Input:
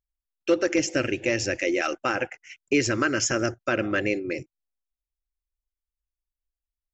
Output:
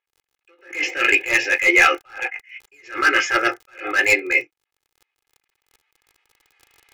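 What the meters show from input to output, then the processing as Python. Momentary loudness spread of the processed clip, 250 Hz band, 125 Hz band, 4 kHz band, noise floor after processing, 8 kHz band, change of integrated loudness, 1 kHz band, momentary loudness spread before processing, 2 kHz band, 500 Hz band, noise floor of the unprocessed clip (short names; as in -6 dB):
15 LU, -5.0 dB, under -10 dB, +6.5 dB, -83 dBFS, n/a, +8.0 dB, +8.0 dB, 10 LU, +12.0 dB, -1.5 dB, under -85 dBFS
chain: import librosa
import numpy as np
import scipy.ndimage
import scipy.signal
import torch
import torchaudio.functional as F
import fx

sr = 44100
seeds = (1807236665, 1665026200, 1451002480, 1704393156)

p1 = fx.recorder_agc(x, sr, target_db=-18.0, rise_db_per_s=11.0, max_gain_db=30)
p2 = fx.lowpass_res(p1, sr, hz=2300.0, q=3.1)
p3 = 10.0 ** (-15.0 / 20.0) * np.tanh(p2 / 10.0 ** (-15.0 / 20.0))
p4 = p2 + (p3 * librosa.db_to_amplitude(-5.0))
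p5 = scipy.signal.sosfilt(scipy.signal.butter(2, 670.0, 'highpass', fs=sr, output='sos'), p4)
p6 = fx.room_early_taps(p5, sr, ms=(17, 40), db=(-4.0, -17.0))
p7 = np.clip(10.0 ** (13.5 / 20.0) * p6, -1.0, 1.0) / 10.0 ** (13.5 / 20.0)
p8 = fx.dmg_crackle(p7, sr, seeds[0], per_s=40.0, level_db=-35.0)
p9 = p8 + 0.78 * np.pad(p8, (int(2.4 * sr / 1000.0), 0))[:len(p8)]
p10 = fx.attack_slew(p9, sr, db_per_s=160.0)
y = p10 * librosa.db_to_amplitude(4.5)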